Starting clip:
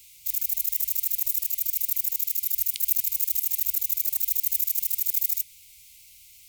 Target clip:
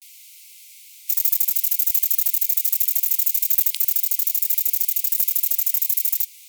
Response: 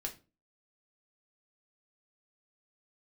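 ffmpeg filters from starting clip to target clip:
-af "areverse,acontrast=55,afftfilt=real='re*gte(b*sr/1024,280*pow(1900/280,0.5+0.5*sin(2*PI*0.47*pts/sr)))':imag='im*gte(b*sr/1024,280*pow(1900/280,0.5+0.5*sin(2*PI*0.47*pts/sr)))':win_size=1024:overlap=0.75"

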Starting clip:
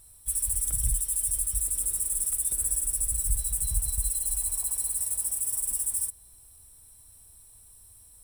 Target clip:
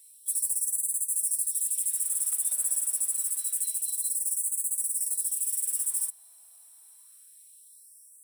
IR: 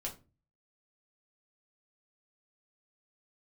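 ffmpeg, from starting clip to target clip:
-af "afftfilt=real='re*gte(b*sr/1024,530*pow(6000/530,0.5+0.5*sin(2*PI*0.27*pts/sr)))':imag='im*gte(b*sr/1024,530*pow(6000/530,0.5+0.5*sin(2*PI*0.27*pts/sr)))':win_size=1024:overlap=0.75"

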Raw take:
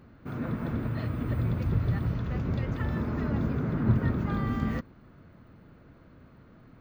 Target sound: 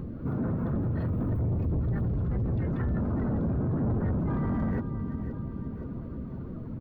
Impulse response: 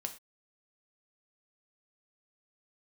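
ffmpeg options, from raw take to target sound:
-filter_complex "[0:a]asplit=3[a][b][c];[b]asetrate=35002,aresample=44100,atempo=1.25992,volume=-4dB[d];[c]asetrate=37084,aresample=44100,atempo=1.18921,volume=-9dB[e];[a][d][e]amix=inputs=3:normalize=0,aecho=1:1:521|1042|1563|2084:0.15|0.0703|0.0331|0.0155,acrossover=split=520[f][g];[f]acontrast=53[h];[h][g]amix=inputs=2:normalize=0,asoftclip=type=tanh:threshold=-22dB,asplit=2[i][j];[j]alimiter=level_in=5.5dB:limit=-24dB:level=0:latency=1,volume=-5.5dB,volume=2dB[k];[i][k]amix=inputs=2:normalize=0,acompressor=threshold=-48dB:ratio=2,afftdn=nr=12:nf=-53,volume=8.5dB"

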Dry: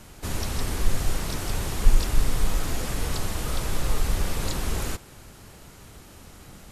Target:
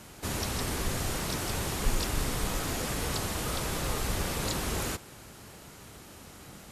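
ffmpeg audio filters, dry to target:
-af "highpass=f=110:p=1"

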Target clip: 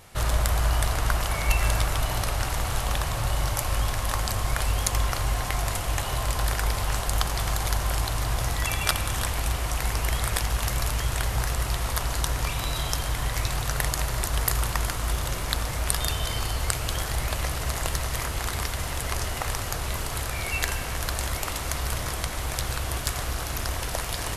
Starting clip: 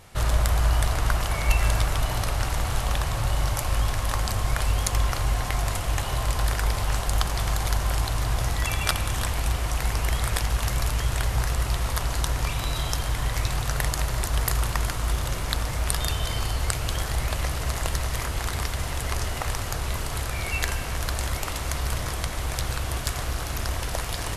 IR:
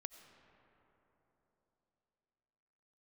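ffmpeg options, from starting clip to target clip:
-filter_complex "[0:a]asplit=2[a][b];[1:a]atrim=start_sample=2205,lowshelf=f=170:g=-9,highshelf=f=10k:g=9.5[c];[b][c]afir=irnorm=-1:irlink=0,volume=1dB[d];[a][d]amix=inputs=2:normalize=0,volume=-4dB"

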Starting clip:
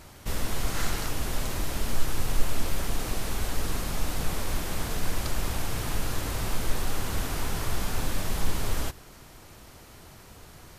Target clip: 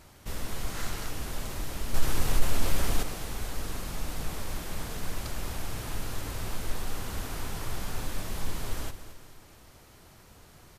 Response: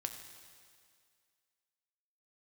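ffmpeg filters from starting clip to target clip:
-filter_complex "[0:a]asettb=1/sr,asplit=3[a][b][c];[a]atrim=end=1.944[d];[b]atrim=start=1.94:end=3.03,asetpts=PTS-STARTPTS,afade=t=in:d=0.004:c=qsin,afade=t=out:st=1.086:d=0.004:c=qsin,acontrast=83[e];[c]atrim=start=3.026[f];[d][e]acrossfade=d=0.004:c1=hsin:c2=qsin[g];[g][f]acrossfade=d=0.004:c1=qsin:c2=hsin,aecho=1:1:221|442|663|884|1105:0.237|0.109|0.0502|0.0231|0.0106,volume=-5.5dB"

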